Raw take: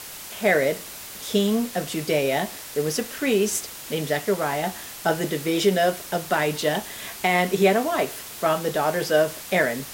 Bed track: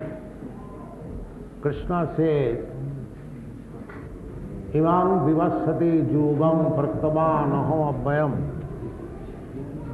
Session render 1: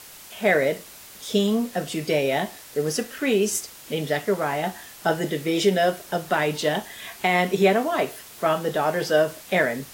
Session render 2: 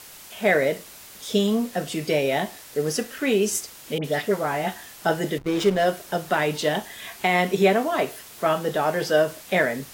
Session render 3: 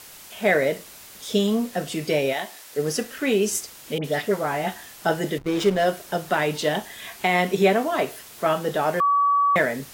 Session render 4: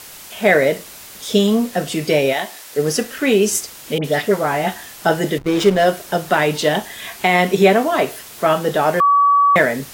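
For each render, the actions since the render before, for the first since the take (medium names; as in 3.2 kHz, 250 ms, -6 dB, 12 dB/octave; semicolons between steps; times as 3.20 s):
noise print and reduce 6 dB
3.98–4.76 s: phase dispersion highs, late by 61 ms, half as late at 1.8 kHz; 5.38–5.86 s: hysteresis with a dead band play -23 dBFS
2.32–2.77 s: high-pass 1.2 kHz -> 320 Hz 6 dB/octave; 9.00–9.56 s: bleep 1.14 kHz -16 dBFS
trim +6.5 dB; peak limiter -2 dBFS, peak gain reduction 1 dB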